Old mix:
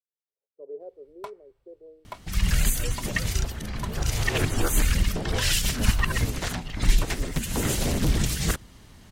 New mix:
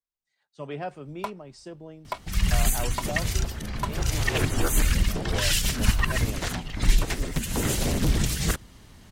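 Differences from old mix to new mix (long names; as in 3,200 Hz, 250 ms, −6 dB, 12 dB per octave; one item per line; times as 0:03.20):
speech: remove flat-topped band-pass 450 Hz, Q 3
first sound +7.0 dB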